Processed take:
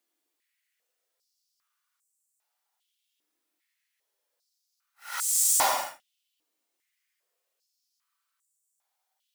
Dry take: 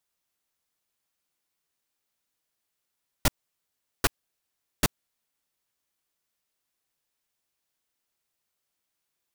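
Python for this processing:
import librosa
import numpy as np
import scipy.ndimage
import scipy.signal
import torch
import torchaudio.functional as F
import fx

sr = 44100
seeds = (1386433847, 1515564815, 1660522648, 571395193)

y = fx.paulstretch(x, sr, seeds[0], factor=8.5, window_s=0.1, from_s=2.62)
y = fx.filter_held_highpass(y, sr, hz=2.5, low_hz=310.0, high_hz=7800.0)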